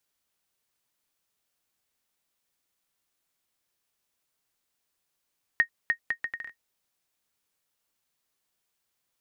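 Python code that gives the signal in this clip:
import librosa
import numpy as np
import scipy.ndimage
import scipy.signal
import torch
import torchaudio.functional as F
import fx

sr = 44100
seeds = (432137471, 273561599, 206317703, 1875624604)

y = fx.bouncing_ball(sr, first_gap_s=0.3, ratio=0.68, hz=1860.0, decay_ms=90.0, level_db=-11.0)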